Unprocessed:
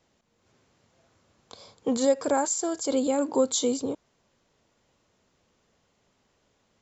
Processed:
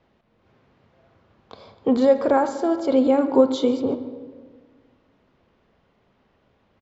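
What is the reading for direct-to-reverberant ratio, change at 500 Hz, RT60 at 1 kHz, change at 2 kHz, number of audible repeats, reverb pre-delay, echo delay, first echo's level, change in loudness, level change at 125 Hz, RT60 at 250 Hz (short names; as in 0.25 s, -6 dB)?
8.5 dB, +7.0 dB, 1.5 s, +5.0 dB, 1, 4 ms, 0.141 s, -18.0 dB, +6.0 dB, +7.5 dB, 2.0 s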